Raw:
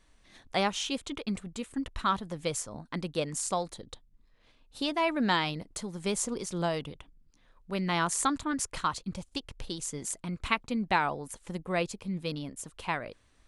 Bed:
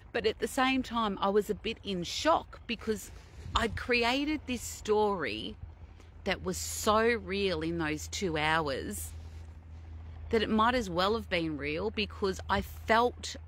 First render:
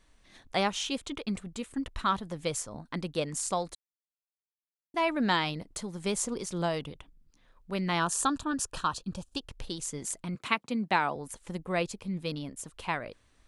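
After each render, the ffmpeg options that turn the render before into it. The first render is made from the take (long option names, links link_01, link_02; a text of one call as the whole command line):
ffmpeg -i in.wav -filter_complex "[0:a]asettb=1/sr,asplit=3[link_01][link_02][link_03];[link_01]atrim=end=8.004[link_04];[link_02]atrim=start=8:end=9.49,asetpts=PTS-STARTPTS,afade=type=in:duration=0.004:curve=qsin,afade=type=out:start_time=1.486:duration=0.004:curve=qsin,asuperstop=centerf=2100:order=4:qfactor=3.7[link_05];[link_03]atrim=start=9.486[link_06];[link_04][link_05]acrossfade=duration=0.004:curve1=hsin:curve2=qsin[link_07];[link_07][link_06]acrossfade=duration=0.004:curve1=qsin:curve2=hsin,asettb=1/sr,asplit=3[link_08][link_09][link_10];[link_08]atrim=end=10.354[link_11];[link_09]atrim=start=10.35:end=11.16,asetpts=PTS-STARTPTS,afade=type=in:duration=0.004:curve=qsin,afade=type=out:start_time=0.806:duration=0.004:curve=qsin,highpass=frequency=140:width=0.5412,highpass=frequency=140:width=1.3066[link_12];[link_10]atrim=start=11.156[link_13];[link_11][link_12]acrossfade=duration=0.004:curve1=hsin:curve2=qsin[link_14];[link_14][link_13]acrossfade=duration=0.004:curve1=qsin:curve2=hsin,asplit=3[link_15][link_16][link_17];[link_15]atrim=end=3.75,asetpts=PTS-STARTPTS,afade=type=out:start_time=3.746:duration=0.004:curve=hsin[link_18];[link_16]atrim=start=3.75:end=4.94,asetpts=PTS-STARTPTS,volume=0[link_19];[link_17]atrim=start=4.94,asetpts=PTS-STARTPTS,afade=type=in:duration=0.004:curve=hsin[link_20];[link_18][link_19][link_20]concat=n=3:v=0:a=1" out.wav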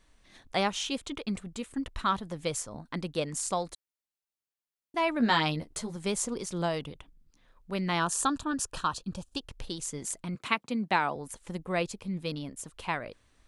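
ffmpeg -i in.wav -filter_complex "[0:a]asettb=1/sr,asplit=3[link_01][link_02][link_03];[link_01]atrim=end=5.194[link_04];[link_02]atrim=start=5.19:end=5.96,asetpts=PTS-STARTPTS,afade=type=in:duration=0.004:curve=qsin,afade=type=out:start_time=0.766:duration=0.004:curve=qsin,asplit=2[link_05][link_06];[link_06]adelay=13,volume=-3dB[link_07];[link_05][link_07]amix=inputs=2:normalize=0,atrim=end_sample=33957[link_08];[link_03]atrim=start=5.956[link_09];[link_04][link_08]acrossfade=duration=0.004:curve1=hsin:curve2=qsin[link_10];[link_10][link_09]acrossfade=duration=0.004:curve1=qsin:curve2=hsin" out.wav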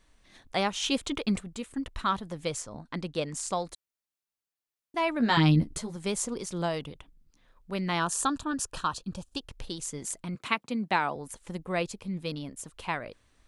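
ffmpeg -i in.wav -filter_complex "[0:a]asplit=3[link_01][link_02][link_03];[link_01]afade=type=out:start_time=0.82:duration=0.02[link_04];[link_02]acontrast=33,afade=type=in:start_time=0.82:duration=0.02,afade=type=out:start_time=1.4:duration=0.02[link_05];[link_03]afade=type=in:start_time=1.4:duration=0.02[link_06];[link_04][link_05][link_06]amix=inputs=3:normalize=0,asettb=1/sr,asplit=3[link_07][link_08][link_09];[link_07]atrim=end=2.494[link_10];[link_08]atrim=start=2.49:end=3.67,asetpts=PTS-STARTPTS,afade=type=in:duration=0.004:curve=qsin,afade=type=out:start_time=1.176:duration=0.004:curve=qsin,lowpass=8900[link_11];[link_09]atrim=start=3.666[link_12];[link_10][link_11]acrossfade=duration=0.004:curve1=hsin:curve2=qsin[link_13];[link_13][link_12]acrossfade=duration=0.004:curve1=qsin:curve2=hsin,asettb=1/sr,asplit=3[link_14][link_15][link_16];[link_14]atrim=end=5.374[link_17];[link_15]atrim=start=5.37:end=5.78,asetpts=PTS-STARTPTS,afade=type=in:duration=0.004:curve=qsin,afade=type=out:start_time=0.406:duration=0.004:curve=qsin,lowshelf=frequency=370:width_type=q:width=1.5:gain=11[link_18];[link_16]atrim=start=5.776[link_19];[link_17][link_18]acrossfade=duration=0.004:curve1=hsin:curve2=qsin[link_20];[link_20][link_19]acrossfade=duration=0.004:curve1=qsin:curve2=hsin" out.wav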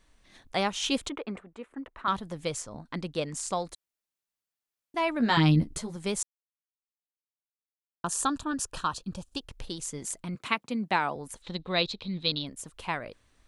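ffmpeg -i in.wav -filter_complex "[0:a]asettb=1/sr,asplit=3[link_01][link_02][link_03];[link_01]atrim=end=1.094[link_04];[link_02]atrim=start=1.09:end=2.08,asetpts=PTS-STARTPTS,afade=type=in:duration=0.004:curve=qsin,afade=type=out:start_time=0.986:duration=0.004:curve=qsin,acrossover=split=290 2200:gain=0.141 1 0.0794[link_05][link_06][link_07];[link_05][link_06][link_07]amix=inputs=3:normalize=0[link_08];[link_03]atrim=start=2.076[link_09];[link_04][link_08]acrossfade=duration=0.004:curve1=hsin:curve2=qsin[link_10];[link_10][link_09]acrossfade=duration=0.004:curve1=qsin:curve2=hsin,asettb=1/sr,asplit=3[link_11][link_12][link_13];[link_11]atrim=end=11.424[link_14];[link_12]atrim=start=11.42:end=12.47,asetpts=PTS-STARTPTS,afade=type=in:duration=0.004:curve=qsin,afade=type=out:start_time=1.046:duration=0.004:curve=qsin,lowpass=frequency=3900:width_type=q:width=12[link_15];[link_13]atrim=start=12.466[link_16];[link_14][link_15]acrossfade=duration=0.004:curve1=hsin:curve2=qsin[link_17];[link_17][link_16]acrossfade=duration=0.004:curve1=qsin:curve2=hsin,asplit=3[link_18][link_19][link_20];[link_18]atrim=end=6.23,asetpts=PTS-STARTPTS,afade=type=out:start_time=6.226:duration=0.004:curve=hsin[link_21];[link_19]atrim=start=6.23:end=8.04,asetpts=PTS-STARTPTS,volume=0[link_22];[link_20]atrim=start=8.04,asetpts=PTS-STARTPTS,afade=type=in:duration=0.004:curve=hsin[link_23];[link_21][link_22][link_23]concat=n=3:v=0:a=1" out.wav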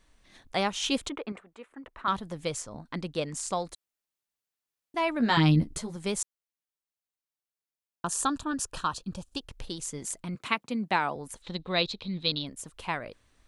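ffmpeg -i in.wav -filter_complex "[0:a]asettb=1/sr,asplit=3[link_01][link_02][link_03];[link_01]atrim=end=1.324[link_04];[link_02]atrim=start=1.32:end=1.84,asetpts=PTS-STARTPTS,afade=type=in:duration=0.004:curve=qsin,afade=type=out:start_time=0.516:duration=0.004:curve=qsin,lowshelf=frequency=390:gain=-9.5[link_05];[link_03]atrim=start=1.836[link_06];[link_04][link_05]acrossfade=duration=0.004:curve1=hsin:curve2=qsin[link_07];[link_07][link_06]acrossfade=duration=0.004:curve1=qsin:curve2=hsin" out.wav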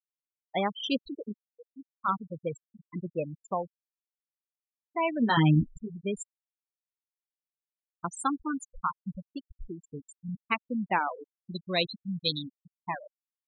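ffmpeg -i in.wav -af "afftfilt=real='re*gte(hypot(re,im),0.0794)':imag='im*gte(hypot(re,im),0.0794)':win_size=1024:overlap=0.75" out.wav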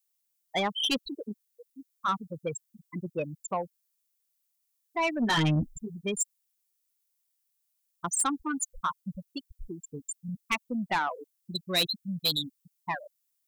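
ffmpeg -i in.wav -af "crystalizer=i=5.5:c=0,asoftclip=type=tanh:threshold=-20.5dB" out.wav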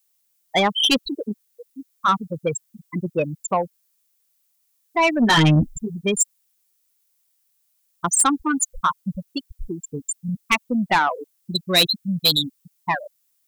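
ffmpeg -i in.wav -af "volume=10dB" out.wav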